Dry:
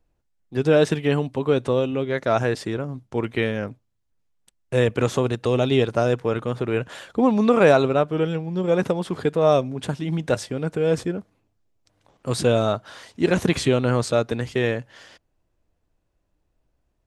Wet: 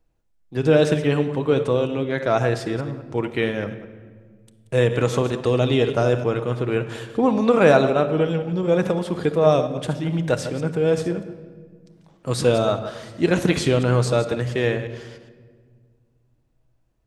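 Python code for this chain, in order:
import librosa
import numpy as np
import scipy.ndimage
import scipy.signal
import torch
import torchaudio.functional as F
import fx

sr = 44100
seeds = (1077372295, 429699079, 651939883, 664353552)

y = fx.reverse_delay(x, sr, ms=104, wet_db=-11.0)
y = fx.room_shoebox(y, sr, seeds[0], volume_m3=2100.0, walls='mixed', distance_m=0.62)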